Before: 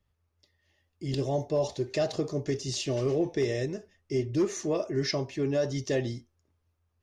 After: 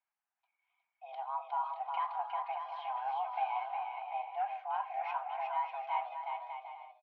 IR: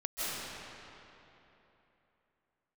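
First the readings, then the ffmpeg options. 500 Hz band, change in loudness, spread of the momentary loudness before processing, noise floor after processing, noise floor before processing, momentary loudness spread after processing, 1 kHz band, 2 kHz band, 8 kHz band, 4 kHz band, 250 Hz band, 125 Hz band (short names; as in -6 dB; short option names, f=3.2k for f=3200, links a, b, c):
-18.0 dB, -7.5 dB, 6 LU, under -85 dBFS, -76 dBFS, 7 LU, +11.0 dB, -6.0 dB, under -40 dB, -17.0 dB, under -40 dB, under -40 dB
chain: -af "aecho=1:1:360|594|746.1|845|909.2:0.631|0.398|0.251|0.158|0.1,highpass=f=320:t=q:w=0.5412,highpass=f=320:t=q:w=1.307,lowpass=f=2.5k:t=q:w=0.5176,lowpass=f=2.5k:t=q:w=0.7071,lowpass=f=2.5k:t=q:w=1.932,afreqshift=390,volume=-7.5dB"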